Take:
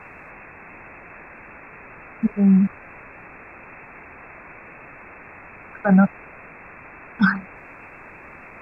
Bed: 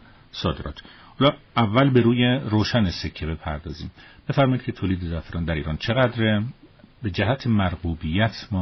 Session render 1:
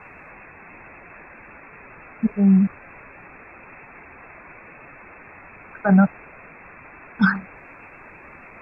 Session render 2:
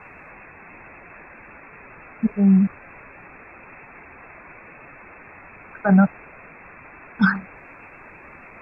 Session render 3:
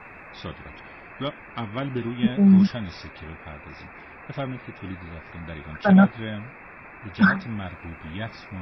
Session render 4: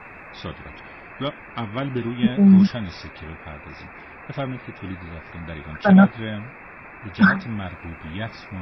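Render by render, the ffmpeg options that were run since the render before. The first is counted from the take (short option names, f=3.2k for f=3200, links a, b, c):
-af "afftdn=nr=6:nf=-43"
-af anull
-filter_complex "[1:a]volume=-12dB[a];[0:a][a]amix=inputs=2:normalize=0"
-af "volume=2.5dB"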